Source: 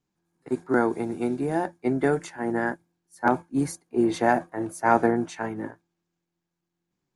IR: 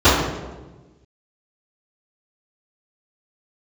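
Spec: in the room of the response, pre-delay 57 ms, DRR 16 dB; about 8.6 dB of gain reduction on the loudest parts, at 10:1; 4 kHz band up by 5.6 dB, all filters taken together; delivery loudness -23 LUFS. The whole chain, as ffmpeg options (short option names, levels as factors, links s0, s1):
-filter_complex "[0:a]equalizer=f=4000:t=o:g=6.5,acompressor=threshold=0.0708:ratio=10,asplit=2[s0][s1];[1:a]atrim=start_sample=2205,adelay=57[s2];[s1][s2]afir=irnorm=-1:irlink=0,volume=0.00668[s3];[s0][s3]amix=inputs=2:normalize=0,volume=2.37"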